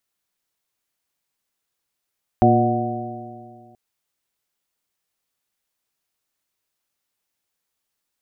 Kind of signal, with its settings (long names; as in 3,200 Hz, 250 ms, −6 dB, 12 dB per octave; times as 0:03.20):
stiff-string partials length 1.33 s, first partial 116 Hz, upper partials 1.5/0/−11.5/−2.5/3.5 dB, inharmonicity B 0.0033, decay 2.12 s, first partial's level −17 dB